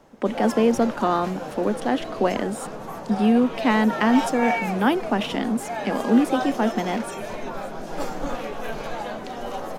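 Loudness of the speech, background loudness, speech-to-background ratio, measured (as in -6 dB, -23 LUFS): -23.0 LUFS, -31.0 LUFS, 8.0 dB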